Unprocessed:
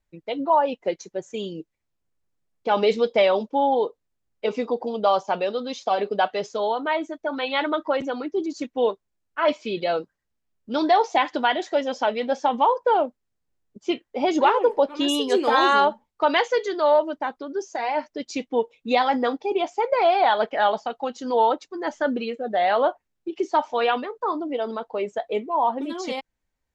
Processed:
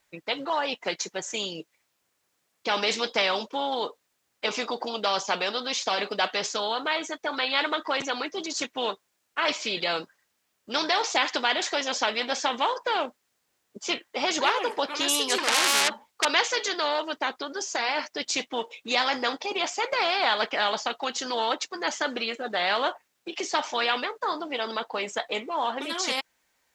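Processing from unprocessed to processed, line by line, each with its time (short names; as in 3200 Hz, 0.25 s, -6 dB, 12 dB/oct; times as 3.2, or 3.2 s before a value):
15.38–16.25 core saturation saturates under 3900 Hz
whole clip: HPF 1000 Hz 6 dB/oct; spectral compressor 2:1; gain +7 dB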